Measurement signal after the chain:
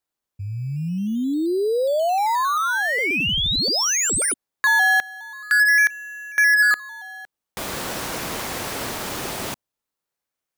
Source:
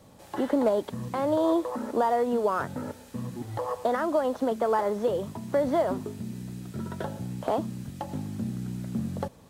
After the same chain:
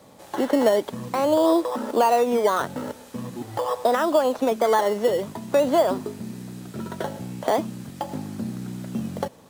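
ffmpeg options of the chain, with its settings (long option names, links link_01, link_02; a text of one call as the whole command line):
ffmpeg -i in.wav -filter_complex "[0:a]highpass=frequency=310:poles=1,asplit=2[link_01][link_02];[link_02]acrusher=samples=14:mix=1:aa=0.000001:lfo=1:lforange=8.4:lforate=0.45,volume=-7dB[link_03];[link_01][link_03]amix=inputs=2:normalize=0,volume=4dB" out.wav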